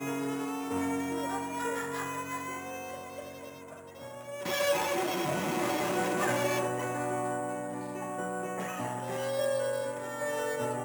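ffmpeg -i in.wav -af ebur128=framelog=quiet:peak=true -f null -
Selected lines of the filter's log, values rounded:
Integrated loudness:
  I:         -32.6 LUFS
  Threshold: -43.0 LUFS
Loudness range:
  LRA:         5.9 LU
  Threshold: -52.9 LUFS
  LRA low:   -36.2 LUFS
  LRA high:  -30.4 LUFS
True peak:
  Peak:      -16.0 dBFS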